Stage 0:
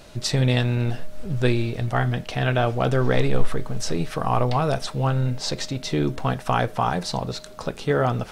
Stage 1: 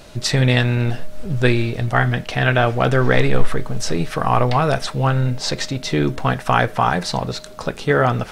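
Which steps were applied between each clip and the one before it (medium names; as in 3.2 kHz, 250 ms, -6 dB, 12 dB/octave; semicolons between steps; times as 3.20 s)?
dynamic bell 1.8 kHz, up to +6 dB, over -40 dBFS, Q 1.3; trim +4 dB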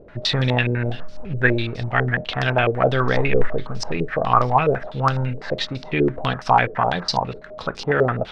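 step-sequenced low-pass 12 Hz 440–5100 Hz; trim -5 dB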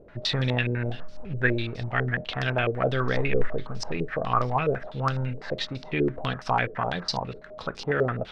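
dynamic bell 850 Hz, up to -5 dB, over -31 dBFS, Q 2; trim -5.5 dB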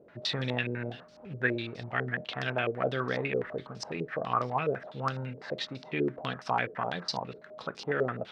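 high-pass 150 Hz 12 dB/octave; trim -4.5 dB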